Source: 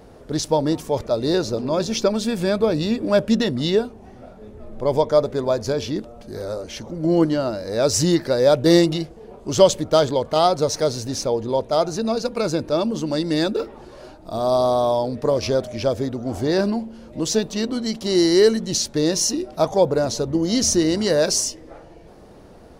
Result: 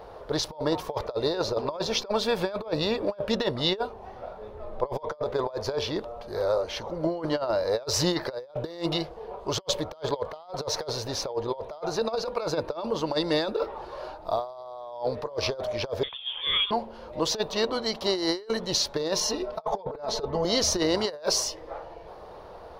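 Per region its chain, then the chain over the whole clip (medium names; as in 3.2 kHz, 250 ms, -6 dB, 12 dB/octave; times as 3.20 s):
16.03–16.71 s: high-pass 540 Hz 24 dB/octave + frequency inversion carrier 3.9 kHz
19.20–20.45 s: treble shelf 4.7 kHz -7.5 dB + comb 4.6 ms, depth 82%
whole clip: graphic EQ 125/250/500/1000/4000/8000 Hz -3/-11/+6/+11/+6/-11 dB; compressor with a negative ratio -20 dBFS, ratio -0.5; trim -7.5 dB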